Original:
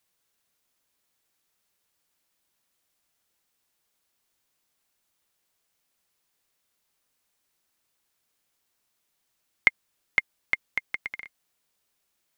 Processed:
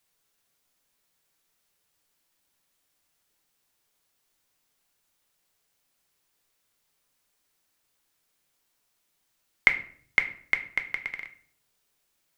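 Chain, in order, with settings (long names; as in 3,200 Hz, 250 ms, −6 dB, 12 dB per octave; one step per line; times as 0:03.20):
rectangular room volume 64 cubic metres, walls mixed, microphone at 0.32 metres
level +1 dB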